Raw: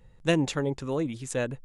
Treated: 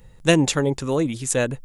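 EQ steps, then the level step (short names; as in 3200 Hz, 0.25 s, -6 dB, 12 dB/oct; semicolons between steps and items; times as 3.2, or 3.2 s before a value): high shelf 6300 Hz +10.5 dB; +7.0 dB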